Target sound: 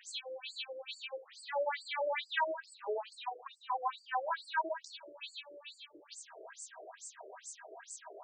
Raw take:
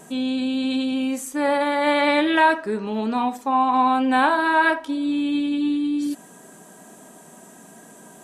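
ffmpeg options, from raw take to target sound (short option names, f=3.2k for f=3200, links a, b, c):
-af "acompressor=threshold=-29dB:ratio=6,highshelf=f=4.8k:g=8,afftfilt=real='re*between(b*sr/1024,460*pow(6300/460,0.5+0.5*sin(2*PI*2.3*pts/sr))/1.41,460*pow(6300/460,0.5+0.5*sin(2*PI*2.3*pts/sr))*1.41)':imag='im*between(b*sr/1024,460*pow(6300/460,0.5+0.5*sin(2*PI*2.3*pts/sr))/1.41,460*pow(6300/460,0.5+0.5*sin(2*PI*2.3*pts/sr))*1.41)':win_size=1024:overlap=0.75,volume=2dB"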